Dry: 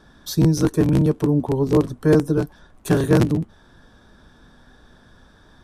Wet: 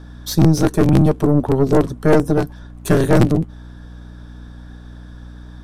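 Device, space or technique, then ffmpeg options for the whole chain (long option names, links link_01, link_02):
valve amplifier with mains hum: -af "aeval=exprs='(tanh(5.62*val(0)+0.7)-tanh(0.7))/5.62':channel_layout=same,aeval=exprs='val(0)+0.00708*(sin(2*PI*60*n/s)+sin(2*PI*2*60*n/s)/2+sin(2*PI*3*60*n/s)/3+sin(2*PI*4*60*n/s)/4+sin(2*PI*5*60*n/s)/5)':channel_layout=same,volume=8dB"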